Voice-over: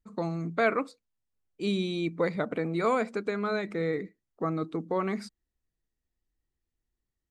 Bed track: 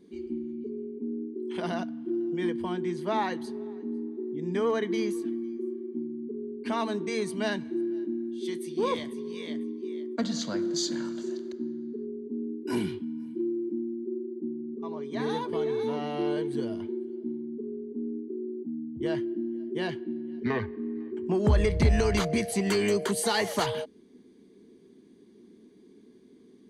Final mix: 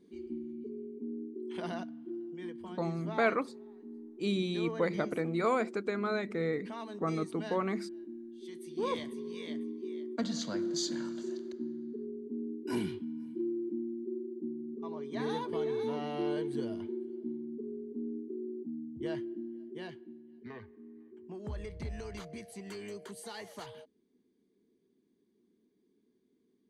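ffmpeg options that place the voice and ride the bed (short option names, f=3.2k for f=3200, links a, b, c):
-filter_complex "[0:a]adelay=2600,volume=-3dB[a];[1:a]volume=2.5dB,afade=t=out:st=1.61:d=0.73:silence=0.446684,afade=t=in:st=8.51:d=0.45:silence=0.375837,afade=t=out:st=18.57:d=1.67:silence=0.211349[b];[a][b]amix=inputs=2:normalize=0"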